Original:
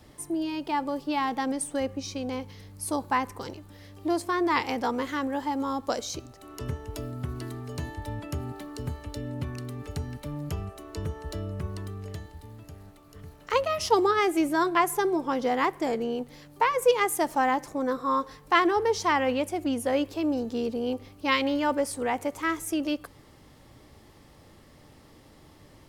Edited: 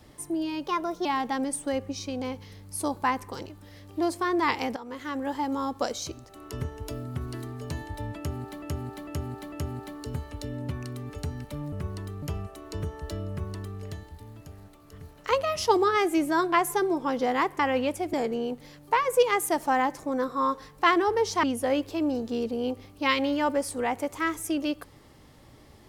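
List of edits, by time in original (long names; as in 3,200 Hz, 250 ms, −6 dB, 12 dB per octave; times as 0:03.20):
0:00.67–0:01.13: play speed 120%
0:04.84–0:05.39: fade in, from −18.5 dB
0:08.25–0:08.70: repeat, 4 plays
0:11.52–0:12.02: duplicate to 0:10.45
0:19.12–0:19.66: move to 0:15.82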